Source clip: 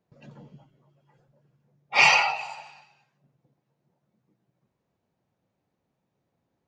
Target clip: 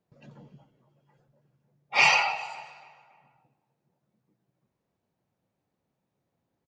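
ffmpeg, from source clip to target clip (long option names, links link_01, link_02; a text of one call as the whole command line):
ffmpeg -i in.wav -filter_complex "[0:a]asplit=2[link_01][link_02];[link_02]adelay=280,lowpass=frequency=2400:poles=1,volume=-19dB,asplit=2[link_03][link_04];[link_04]adelay=280,lowpass=frequency=2400:poles=1,volume=0.49,asplit=2[link_05][link_06];[link_06]adelay=280,lowpass=frequency=2400:poles=1,volume=0.49,asplit=2[link_07][link_08];[link_08]adelay=280,lowpass=frequency=2400:poles=1,volume=0.49[link_09];[link_01][link_03][link_05][link_07][link_09]amix=inputs=5:normalize=0,volume=-2.5dB" out.wav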